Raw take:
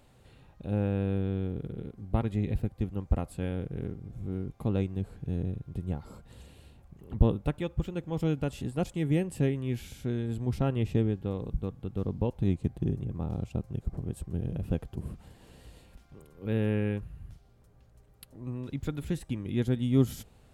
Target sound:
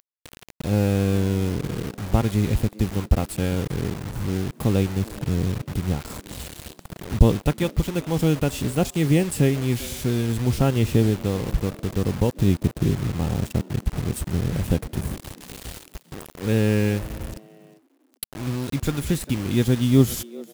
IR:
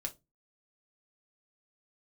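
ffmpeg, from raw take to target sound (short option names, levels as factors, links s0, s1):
-filter_complex "[0:a]highshelf=f=3700:g=8,asplit=2[s0][s1];[s1]acompressor=threshold=0.00794:ratio=5,volume=0.891[s2];[s0][s2]amix=inputs=2:normalize=0,acrusher=bits=6:mix=0:aa=0.000001,asplit=3[s3][s4][s5];[s4]adelay=398,afreqshift=110,volume=0.0841[s6];[s5]adelay=796,afreqshift=220,volume=0.0285[s7];[s3][s6][s7]amix=inputs=3:normalize=0,volume=2.24"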